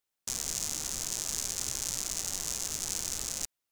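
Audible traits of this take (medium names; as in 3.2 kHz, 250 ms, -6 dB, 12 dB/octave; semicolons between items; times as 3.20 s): noise floor -86 dBFS; spectral tilt -1.0 dB/octave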